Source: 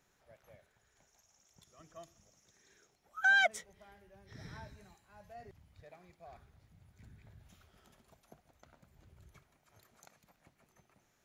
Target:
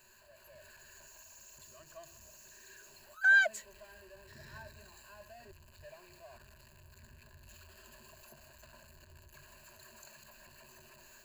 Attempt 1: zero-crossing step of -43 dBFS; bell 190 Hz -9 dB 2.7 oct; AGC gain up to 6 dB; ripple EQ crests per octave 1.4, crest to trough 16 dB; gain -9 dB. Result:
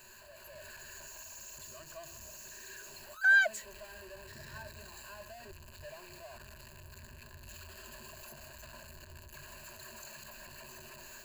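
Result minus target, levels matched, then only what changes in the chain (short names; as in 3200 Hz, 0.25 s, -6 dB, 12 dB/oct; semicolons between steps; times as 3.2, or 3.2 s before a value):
zero-crossing step: distortion +8 dB
change: zero-crossing step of -51 dBFS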